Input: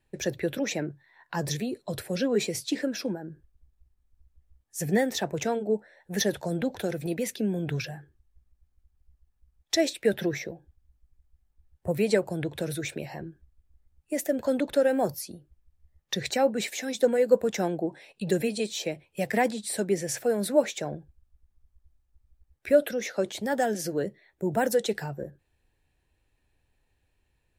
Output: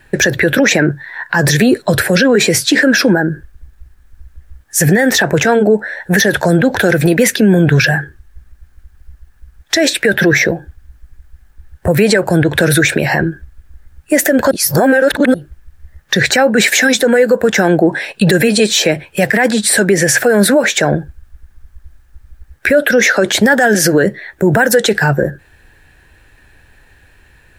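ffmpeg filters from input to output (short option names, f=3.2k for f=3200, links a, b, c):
-filter_complex "[0:a]asplit=3[a][b][c];[a]atrim=end=14.512[d];[b]atrim=start=14.508:end=15.342,asetpts=PTS-STARTPTS,areverse[e];[c]atrim=start=15.338[f];[d][e]acrossfade=d=0.004:c1=hsin:c2=hsin[g];[g][f]acrossfade=d=0.004:c1=hsin:c2=hsin,equalizer=f=1.6k:t=o:w=0.57:g=12.5,acompressor=threshold=-26dB:ratio=3,alimiter=level_in=25dB:limit=-1dB:release=50:level=0:latency=1,volume=-1dB"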